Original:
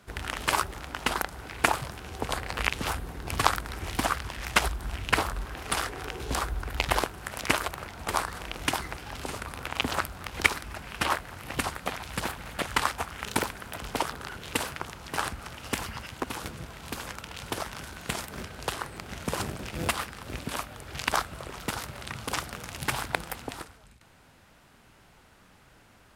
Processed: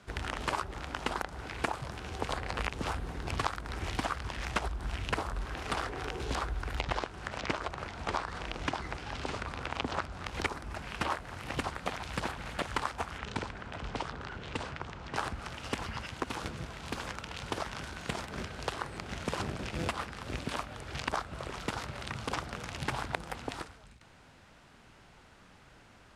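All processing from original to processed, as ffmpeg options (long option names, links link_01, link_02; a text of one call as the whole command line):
ffmpeg -i in.wav -filter_complex "[0:a]asettb=1/sr,asplit=3[link_01][link_02][link_03];[link_01]atrim=end=6.804[link_04];[link_02]atrim=start=6.8:end=10.26,asetpts=PTS-STARTPTS,afade=type=in:duration=0.004:curve=qsin,afade=type=out:start_time=3.456:duration=0.004:curve=qsin,lowpass=10000,acrossover=split=6500[link_05][link_06];[link_06]acompressor=threshold=-54dB:ratio=4:attack=1:release=60[link_07];[link_05][link_07]amix=inputs=2:normalize=0[link_08];[link_03]atrim=start=10.256[link_09];[link_04][link_08]acrossfade=duration=0.004:curve1=hsin:curve2=qsin[link_10];[link_10][link_09]acrossfade=duration=0.004:curve1=qsin:curve2=hsin,asettb=1/sr,asplit=3[link_11][link_12][link_13];[link_11]atrim=end=13.184[link_14];[link_12]atrim=start=13.18:end=15.16,asetpts=PTS-STARTPTS,afade=type=in:duration=0.004:curve=qsin,afade=type=out:start_time=1.976:duration=0.004:curve=qsin,aemphasis=mode=reproduction:type=75fm,acrossover=split=170|3000[link_15][link_16][link_17];[link_16]acompressor=threshold=-43dB:ratio=1.5:attack=3.2:release=140:knee=2.83:detection=peak[link_18];[link_15][link_18][link_17]amix=inputs=3:normalize=0,lowpass=frequency=9600:width=0.5412,lowpass=frequency=9600:width=1.3066[link_19];[link_13]atrim=start=15.156[link_20];[link_14][link_19]acrossfade=duration=0.004:curve1=hsin:curve2=qsin[link_21];[link_21][link_20]acrossfade=duration=0.004:curve1=qsin:curve2=hsin,lowpass=7600,acrossover=split=1300|5300[link_22][link_23][link_24];[link_22]acompressor=threshold=-31dB:ratio=4[link_25];[link_23]acompressor=threshold=-39dB:ratio=4[link_26];[link_24]acompressor=threshold=-51dB:ratio=4[link_27];[link_25][link_26][link_27]amix=inputs=3:normalize=0" out.wav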